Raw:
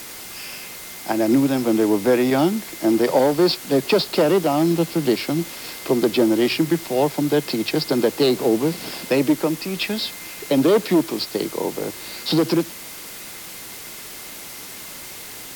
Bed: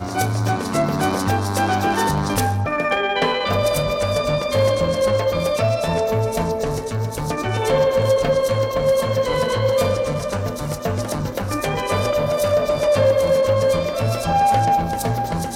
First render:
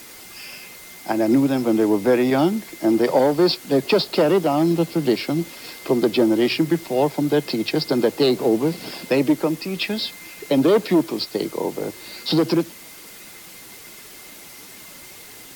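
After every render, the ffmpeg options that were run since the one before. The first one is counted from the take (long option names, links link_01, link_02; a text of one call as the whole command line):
ffmpeg -i in.wav -af "afftdn=noise_reduction=6:noise_floor=-36" out.wav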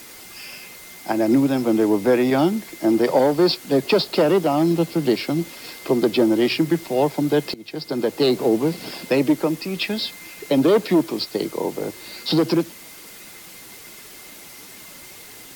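ffmpeg -i in.wav -filter_complex "[0:a]asplit=2[link_01][link_02];[link_01]atrim=end=7.54,asetpts=PTS-STARTPTS,afade=type=out:start_time=7.536:duration=0.004:curve=hsin:silence=0.0749894[link_03];[link_02]atrim=start=7.54,asetpts=PTS-STARTPTS,afade=type=in:duration=0.76:silence=0.0749894[link_04];[link_03][link_04]concat=n=2:v=0:a=1" out.wav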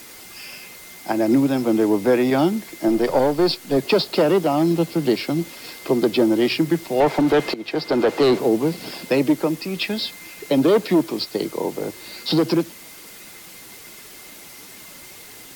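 ffmpeg -i in.wav -filter_complex "[0:a]asettb=1/sr,asplit=3[link_01][link_02][link_03];[link_01]atrim=end=2.884[link_04];[link_02]atrim=start=2.88:end=3.77,asetpts=PTS-STARTPTS,afade=type=in:duration=0.004:curve=qsin,afade=type=out:start_time=0.886:duration=0.004:curve=qsin,aeval=exprs='if(lt(val(0),0),0.708*val(0),val(0))':channel_layout=same[link_05];[link_03]atrim=start=3.766[link_06];[link_04][link_05]acrossfade=duration=0.004:curve1=hsin:curve2=qsin[link_07];[link_07][link_06]acrossfade=duration=0.004:curve1=qsin:curve2=hsin,asettb=1/sr,asplit=3[link_08][link_09][link_10];[link_08]atrim=end=7.004[link_11];[link_09]atrim=start=7:end=8.39,asetpts=PTS-STARTPTS,afade=type=in:duration=0.004:curve=qsin,afade=type=out:start_time=1.386:duration=0.004:curve=qsin,asplit=2[link_12][link_13];[link_13]highpass=frequency=720:poles=1,volume=21dB,asoftclip=type=tanh:threshold=-8dB[link_14];[link_12][link_14]amix=inputs=2:normalize=0,lowpass=frequency=1400:poles=1,volume=-6dB[link_15];[link_10]atrim=start=8.386[link_16];[link_11][link_15]acrossfade=duration=0.004:curve1=hsin:curve2=qsin[link_17];[link_17][link_16]acrossfade=duration=0.004:curve1=qsin:curve2=hsin" out.wav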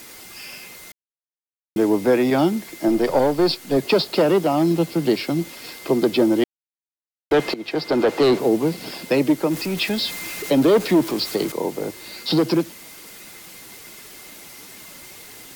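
ffmpeg -i in.wav -filter_complex "[0:a]asettb=1/sr,asplit=3[link_01][link_02][link_03];[link_01]atrim=end=9.514[link_04];[link_02]atrim=start=9.51:end=11.52,asetpts=PTS-STARTPTS,afade=type=in:duration=0.004:curve=qsin,afade=type=out:start_time=2.006:duration=0.004:curve=qsin,aeval=exprs='val(0)+0.5*0.0355*sgn(val(0))':channel_layout=same[link_05];[link_03]atrim=start=11.516[link_06];[link_04][link_05]acrossfade=duration=0.004:curve1=hsin:curve2=qsin[link_07];[link_07][link_06]acrossfade=duration=0.004:curve1=qsin:curve2=hsin,asplit=5[link_08][link_09][link_10][link_11][link_12];[link_08]atrim=end=0.92,asetpts=PTS-STARTPTS,afade=type=out:start_time=0.916:duration=0.004:curve=hsin[link_13];[link_09]atrim=start=0.92:end=1.76,asetpts=PTS-STARTPTS,volume=0[link_14];[link_10]atrim=start=1.76:end=6.44,asetpts=PTS-STARTPTS,afade=type=in:duration=0.004:curve=hsin,afade=type=out:start_time=4.676:duration=0.004:curve=hsin[link_15];[link_11]atrim=start=6.44:end=7.31,asetpts=PTS-STARTPTS,volume=0[link_16];[link_12]atrim=start=7.31,asetpts=PTS-STARTPTS,afade=type=in:duration=0.004:curve=hsin[link_17];[link_13][link_14][link_15][link_16][link_17]concat=n=5:v=0:a=1" out.wav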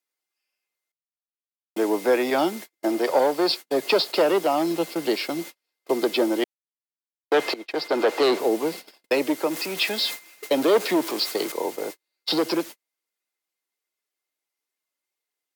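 ffmpeg -i in.wav -af "agate=range=-45dB:threshold=-29dB:ratio=16:detection=peak,highpass=430" out.wav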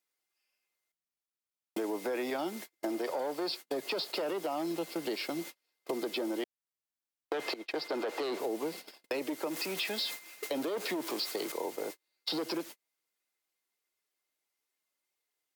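ffmpeg -i in.wav -af "alimiter=limit=-16dB:level=0:latency=1:release=11,acompressor=threshold=-35dB:ratio=3" out.wav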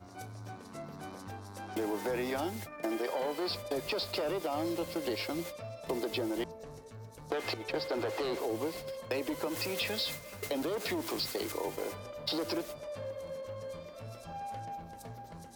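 ffmpeg -i in.wav -i bed.wav -filter_complex "[1:a]volume=-25dB[link_01];[0:a][link_01]amix=inputs=2:normalize=0" out.wav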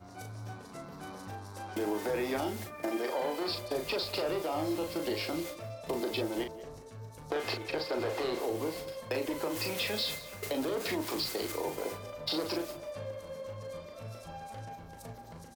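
ffmpeg -i in.wav -filter_complex "[0:a]asplit=2[link_01][link_02];[link_02]adelay=38,volume=-5.5dB[link_03];[link_01][link_03]amix=inputs=2:normalize=0,aecho=1:1:183:0.126" out.wav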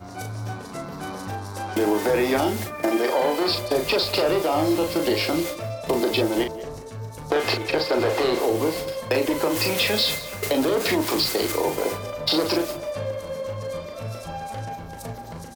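ffmpeg -i in.wav -af "volume=11.5dB" out.wav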